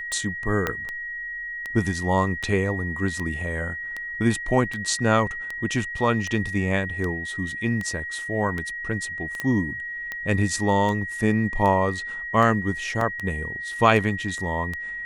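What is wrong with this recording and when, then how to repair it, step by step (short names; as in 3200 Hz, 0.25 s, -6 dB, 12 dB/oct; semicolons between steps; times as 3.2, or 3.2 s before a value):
tick 78 rpm
tone 1900 Hz -30 dBFS
0.67 pop -10 dBFS
9.4 pop -13 dBFS
13.01 gap 2.8 ms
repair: de-click; notch 1900 Hz, Q 30; interpolate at 13.01, 2.8 ms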